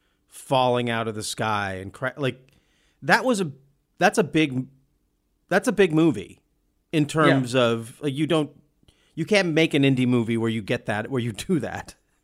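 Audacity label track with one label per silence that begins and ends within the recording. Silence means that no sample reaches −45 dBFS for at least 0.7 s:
4.690000	5.490000	silence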